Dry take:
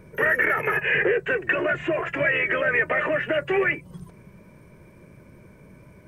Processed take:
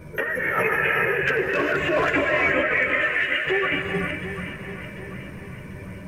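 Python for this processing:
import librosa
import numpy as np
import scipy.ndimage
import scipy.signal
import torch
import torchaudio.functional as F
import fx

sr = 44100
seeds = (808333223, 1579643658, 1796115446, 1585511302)

p1 = fx.steep_highpass(x, sr, hz=1800.0, slope=36, at=(2.72, 3.47))
p2 = fx.over_compress(p1, sr, threshold_db=-27.0, ratio=-1.0)
p3 = fx.chorus_voices(p2, sr, voices=2, hz=0.51, base_ms=13, depth_ms=2.8, mix_pct=55)
p4 = fx.clip_hard(p3, sr, threshold_db=-23.5, at=(1.08, 2.09))
p5 = p4 + fx.echo_feedback(p4, sr, ms=742, feedback_pct=44, wet_db=-12.0, dry=0)
p6 = fx.rev_gated(p5, sr, seeds[0], gate_ms=440, shape='rising', drr_db=2.0)
y = F.gain(torch.from_numpy(p6), 6.5).numpy()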